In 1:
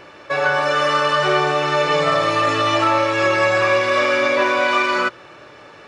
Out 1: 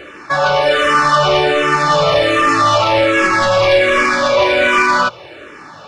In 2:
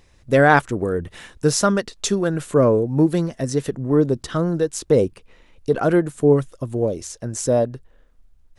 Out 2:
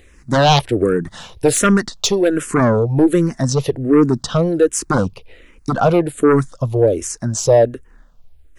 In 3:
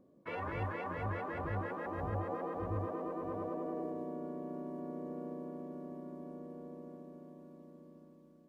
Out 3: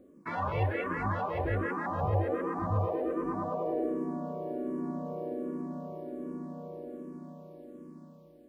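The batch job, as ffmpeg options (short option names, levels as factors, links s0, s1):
-filter_complex "[0:a]aeval=exprs='0.891*sin(PI/2*3.16*val(0)/0.891)':c=same,asplit=2[s0][s1];[s1]afreqshift=-1.3[s2];[s0][s2]amix=inputs=2:normalize=1,volume=0.631"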